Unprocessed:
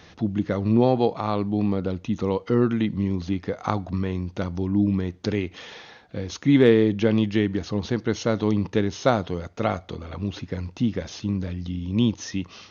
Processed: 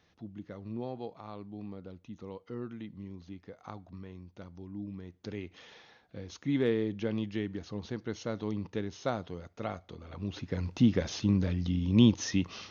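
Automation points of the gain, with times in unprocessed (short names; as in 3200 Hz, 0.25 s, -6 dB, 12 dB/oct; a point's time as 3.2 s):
4.94 s -19.5 dB
5.52 s -12.5 dB
9.96 s -12.5 dB
10.78 s -0.5 dB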